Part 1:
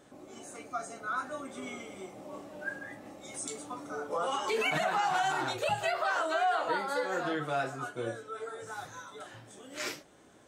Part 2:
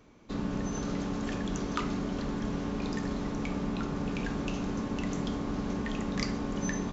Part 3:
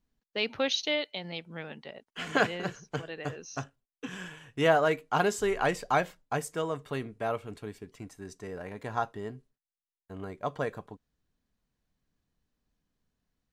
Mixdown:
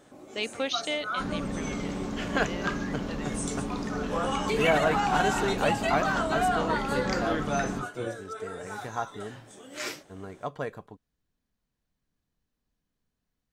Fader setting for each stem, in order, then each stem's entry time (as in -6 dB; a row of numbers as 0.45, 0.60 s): +2.0, -0.5, -1.5 dB; 0.00, 0.90, 0.00 s